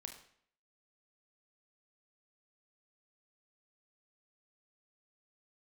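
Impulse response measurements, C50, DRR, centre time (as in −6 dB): 8.0 dB, 4.0 dB, 19 ms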